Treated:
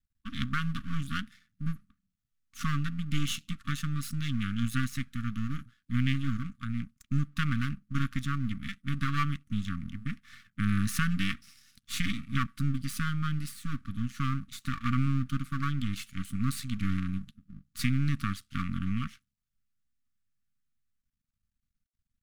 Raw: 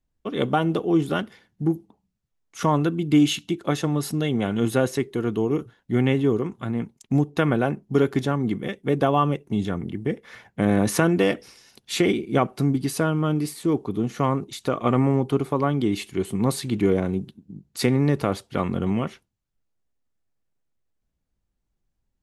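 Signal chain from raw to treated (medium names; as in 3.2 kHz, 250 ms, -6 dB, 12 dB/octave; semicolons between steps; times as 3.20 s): half-wave rectifier; brick-wall FIR band-stop 280–1100 Hz; trim -3 dB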